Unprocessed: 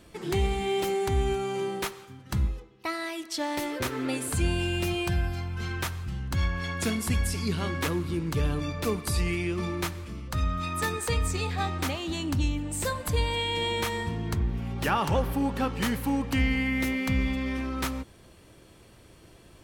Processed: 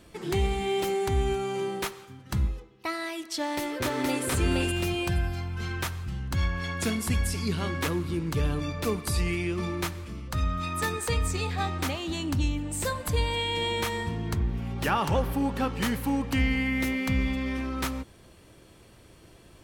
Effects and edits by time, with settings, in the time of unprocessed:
0:03.37–0:04.24: delay throw 470 ms, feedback 15%, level −1 dB

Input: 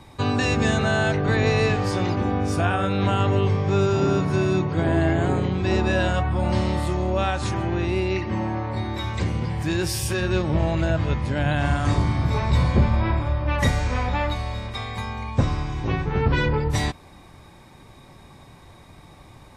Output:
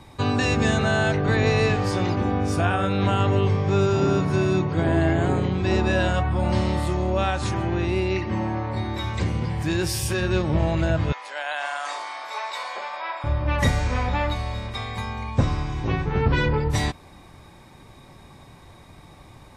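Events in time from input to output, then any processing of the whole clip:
0:11.12–0:13.24: high-pass filter 670 Hz 24 dB per octave

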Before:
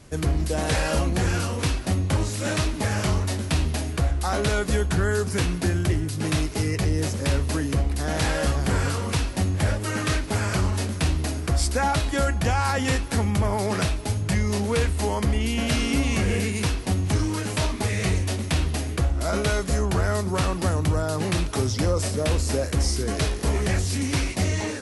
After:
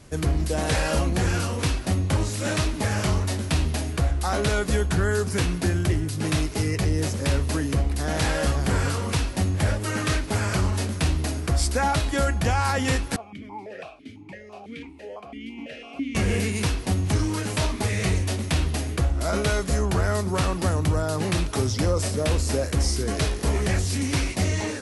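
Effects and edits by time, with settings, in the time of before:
0:13.16–0:16.15: formant filter that steps through the vowels 6 Hz

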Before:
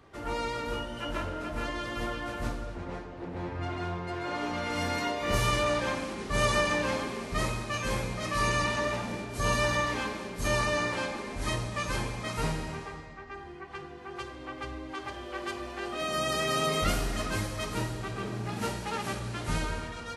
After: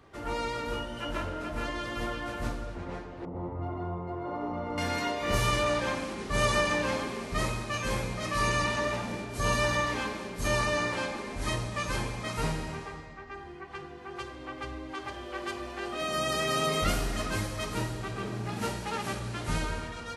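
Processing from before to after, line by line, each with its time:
0:03.25–0:04.78: Savitzky-Golay smoothing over 65 samples

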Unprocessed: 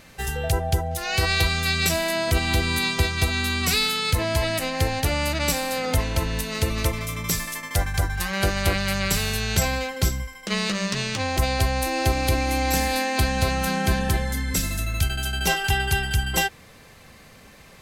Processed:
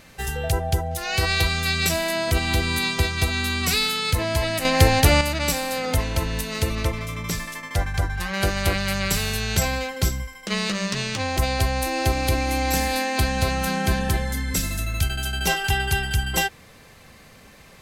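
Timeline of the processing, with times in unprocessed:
0:04.65–0:05.21: clip gain +7.5 dB
0:06.75–0:08.34: high-shelf EQ 6,800 Hz −10.5 dB

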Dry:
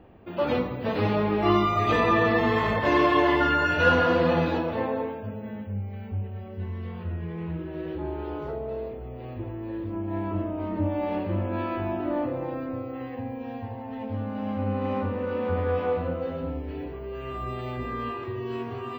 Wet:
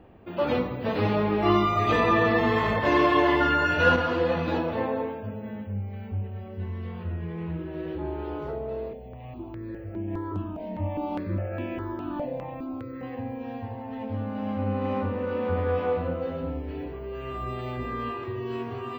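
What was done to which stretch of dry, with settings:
0:03.96–0:04.48: string-ensemble chorus
0:08.93–0:13.03: step-sequenced phaser 4.9 Hz 340–4,200 Hz

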